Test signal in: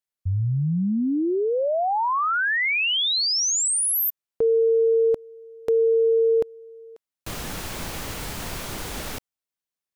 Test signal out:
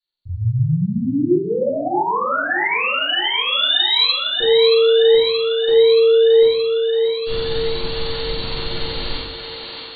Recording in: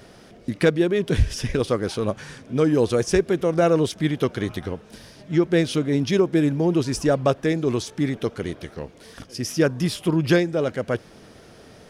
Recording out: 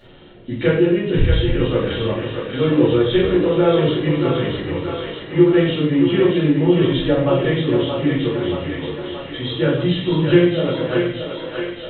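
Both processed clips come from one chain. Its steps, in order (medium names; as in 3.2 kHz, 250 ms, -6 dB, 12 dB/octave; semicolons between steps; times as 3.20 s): knee-point frequency compression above 2.7 kHz 4:1; thinning echo 626 ms, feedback 73%, high-pass 390 Hz, level -5 dB; simulated room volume 98 m³, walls mixed, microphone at 2.4 m; trim -8 dB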